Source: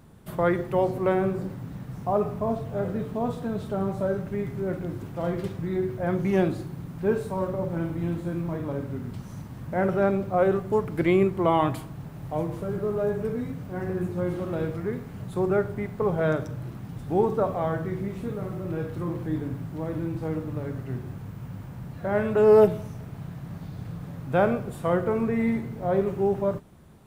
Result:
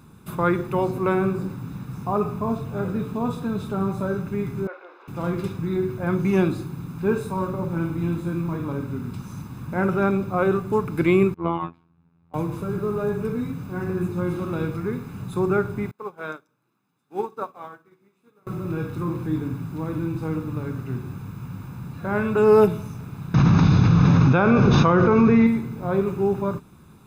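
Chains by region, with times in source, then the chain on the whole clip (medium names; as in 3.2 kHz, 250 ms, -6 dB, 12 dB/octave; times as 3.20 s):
4.67–5.08 s: steep high-pass 490 Hz + distance through air 300 m
11.34–12.34 s: robot voice 84.2 Hz + distance through air 260 m + upward expansion 2.5:1, over -37 dBFS
15.91–18.47 s: high-pass 220 Hz + bass shelf 350 Hz -10 dB + upward expansion 2.5:1, over -41 dBFS
23.34–25.47 s: brick-wall FIR low-pass 6.6 kHz + level flattener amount 100%
whole clip: bass shelf 96 Hz -10 dB; comb 0.8 ms, depth 61%; trim +3 dB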